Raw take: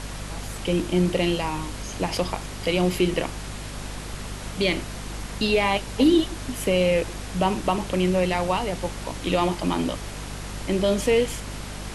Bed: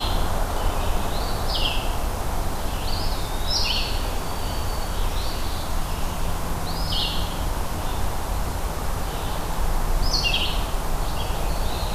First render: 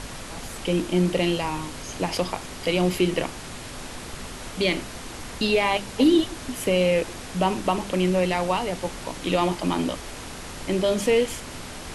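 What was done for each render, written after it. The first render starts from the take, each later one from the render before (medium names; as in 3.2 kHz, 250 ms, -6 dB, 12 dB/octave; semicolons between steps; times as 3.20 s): de-hum 50 Hz, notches 4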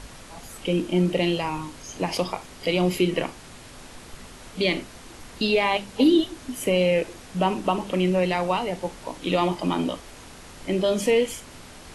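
noise print and reduce 7 dB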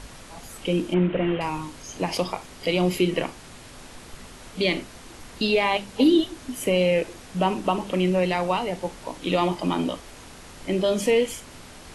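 0.94–1.41 s: one-bit delta coder 16 kbps, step -32.5 dBFS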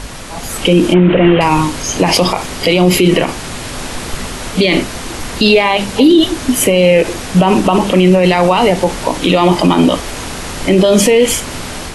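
level rider gain up to 6 dB; loudness maximiser +14.5 dB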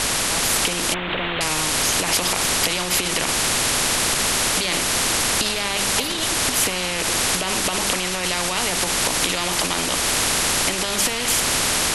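compression, threshold -16 dBFS, peak gain reduction 11 dB; spectrum-flattening compressor 4:1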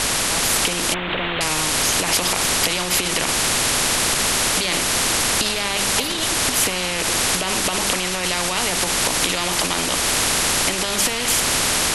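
trim +1 dB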